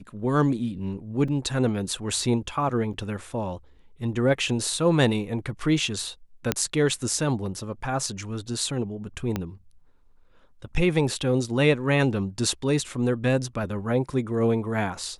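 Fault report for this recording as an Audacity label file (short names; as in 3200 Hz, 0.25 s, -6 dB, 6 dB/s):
1.280000	1.280000	gap 3.9 ms
2.930000	2.940000	gap 6.9 ms
6.520000	6.520000	pop -5 dBFS
9.360000	9.360000	pop -13 dBFS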